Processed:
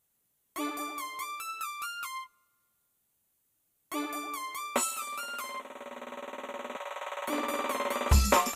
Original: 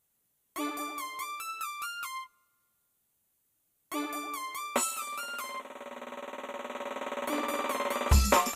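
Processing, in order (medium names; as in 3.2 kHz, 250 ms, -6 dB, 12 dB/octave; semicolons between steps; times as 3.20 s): 6.76–7.28 s: high-pass 570 Hz 24 dB/octave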